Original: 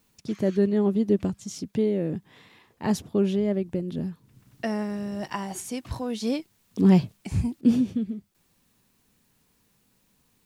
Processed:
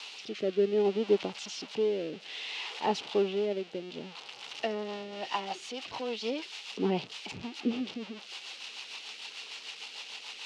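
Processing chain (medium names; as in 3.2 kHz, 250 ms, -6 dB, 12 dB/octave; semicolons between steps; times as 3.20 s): zero-crossing glitches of -18.5 dBFS; cabinet simulation 380–4200 Hz, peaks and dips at 430 Hz +5 dB, 820 Hz +8 dB, 1.7 kHz -5 dB, 2.8 kHz +7 dB; rotary cabinet horn 0.6 Hz, later 6.7 Hz, at 4.45 s; trim -2 dB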